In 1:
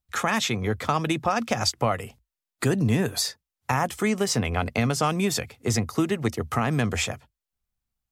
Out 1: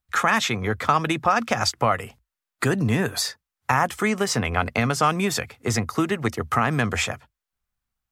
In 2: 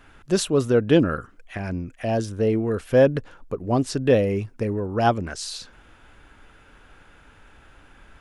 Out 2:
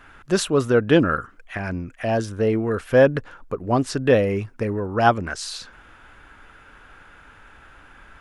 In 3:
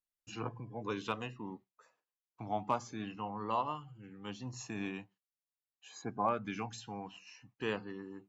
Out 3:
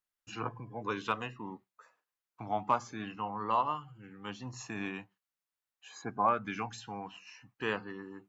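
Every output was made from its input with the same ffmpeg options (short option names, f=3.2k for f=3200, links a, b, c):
-af "equalizer=f=1.4k:w=0.88:g=7"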